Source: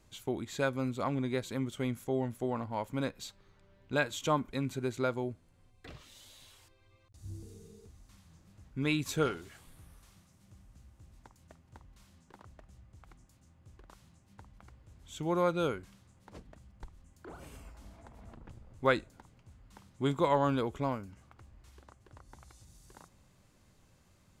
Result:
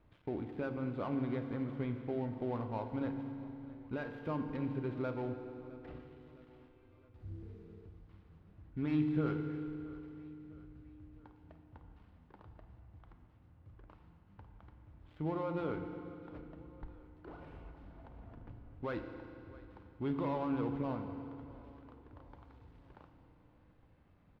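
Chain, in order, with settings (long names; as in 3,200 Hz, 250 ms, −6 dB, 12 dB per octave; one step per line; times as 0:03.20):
gap after every zero crossing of 0.13 ms
high-shelf EQ 6,300 Hz −4 dB
brickwall limiter −25.5 dBFS, peak gain reduction 11 dB
high-frequency loss of the air 410 metres
repeating echo 661 ms, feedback 50%, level −20 dB
feedback delay network reverb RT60 2.7 s, low-frequency decay 1.2×, high-frequency decay 0.9×, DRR 5.5 dB
level −1.5 dB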